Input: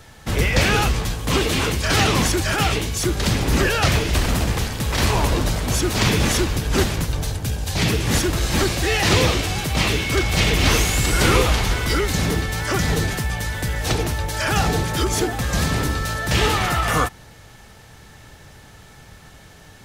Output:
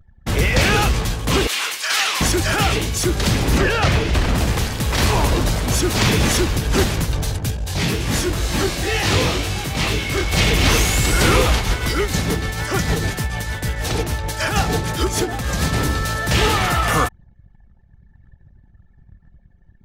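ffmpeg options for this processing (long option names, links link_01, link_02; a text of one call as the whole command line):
ffmpeg -i in.wav -filter_complex "[0:a]asettb=1/sr,asplit=3[link_01][link_02][link_03];[link_01]atrim=end=1.474[link_04];[link_02]atrim=start=1.47:end=2.21,asetpts=PTS-STARTPTS,afade=type=in:duration=0.004:curve=qsin,afade=type=out:start_time=0.736:duration=0.004:curve=qsin,highpass=1200[link_05];[link_03]atrim=start=2.206[link_06];[link_04][link_05]acrossfade=duration=0.004:curve1=hsin:curve2=qsin[link_07];[link_07][link_06]acrossfade=duration=0.004:curve1=qsin:curve2=hsin,asettb=1/sr,asplit=3[link_08][link_09][link_10];[link_08]atrim=end=3.584[link_11];[link_09]atrim=start=3.58:end=4.38,asetpts=PTS-STARTPTS,afade=type=in:duration=0.004:curve=qsin,afade=type=out:start_time=0.796:duration=0.004:curve=qsin,highshelf=frequency=6700:gain=-12[link_12];[link_10]atrim=start=4.376[link_13];[link_11][link_12]acrossfade=duration=0.004:curve1=hsin:curve2=qsin[link_14];[link_14][link_13]acrossfade=duration=0.004:curve1=qsin:curve2=hsin,asplit=3[link_15][link_16][link_17];[link_15]afade=type=out:start_time=7.5:duration=0.02[link_18];[link_16]flanger=delay=19.5:depth=3.1:speed=2.1,afade=type=in:start_time=7.5:duration=0.02,afade=type=out:start_time=10.31:duration=0.02[link_19];[link_17]afade=type=in:start_time=10.31:duration=0.02[link_20];[link_18][link_19][link_20]amix=inputs=3:normalize=0,asettb=1/sr,asplit=3[link_21][link_22][link_23];[link_21]atrim=end=11.564[link_24];[link_22]atrim=start=11.56:end=15.73,asetpts=PTS-STARTPTS,afade=type=in:duration=0.004:curve=qsin,afade=type=out:start_time=4.166:duration=0.004:curve=qsin,tremolo=f=6.6:d=0.46[link_25];[link_23]atrim=start=15.726[link_26];[link_24][link_25]acrossfade=duration=0.004:curve1=hsin:curve2=qsin[link_27];[link_27][link_26]acrossfade=duration=0.004:curve1=qsin:curve2=hsin,anlmdn=2.51,acontrast=53,volume=-3.5dB" out.wav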